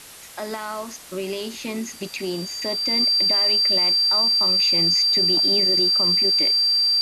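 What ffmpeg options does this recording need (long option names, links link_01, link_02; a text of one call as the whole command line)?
ffmpeg -i in.wav -af "bandreject=frequency=4700:width=30,afftdn=noise_reduction=30:noise_floor=-37" out.wav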